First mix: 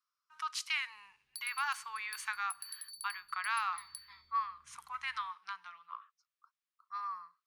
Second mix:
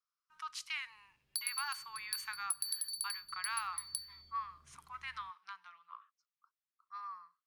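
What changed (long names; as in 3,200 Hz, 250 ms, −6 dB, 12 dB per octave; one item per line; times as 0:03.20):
speech −5.5 dB
background +8.0 dB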